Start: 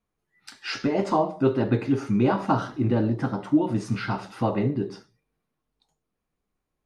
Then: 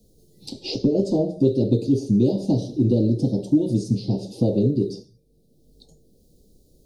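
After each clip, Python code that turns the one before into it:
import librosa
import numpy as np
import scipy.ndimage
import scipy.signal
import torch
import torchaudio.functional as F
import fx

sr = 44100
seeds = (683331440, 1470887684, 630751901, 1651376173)

y = scipy.signal.sosfilt(scipy.signal.ellip(3, 1.0, 80, [520.0, 4200.0], 'bandstop', fs=sr, output='sos'), x)
y = fx.band_squash(y, sr, depth_pct=70)
y = F.gain(torch.from_numpy(y), 5.0).numpy()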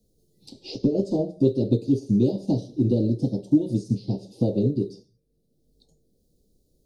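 y = fx.upward_expand(x, sr, threshold_db=-32.0, expansion=1.5)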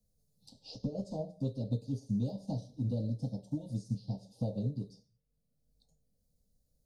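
y = fx.fixed_phaser(x, sr, hz=870.0, stages=4)
y = F.gain(torch.from_numpy(y), -7.5).numpy()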